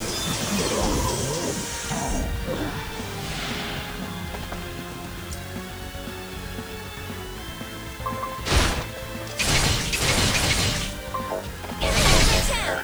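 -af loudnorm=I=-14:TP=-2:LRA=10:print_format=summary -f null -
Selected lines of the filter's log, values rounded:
Input Integrated:    -24.1 LUFS
Input True Peak:      -4.4 dBTP
Input LRA:            11.9 LU
Input Threshold:     -34.3 LUFS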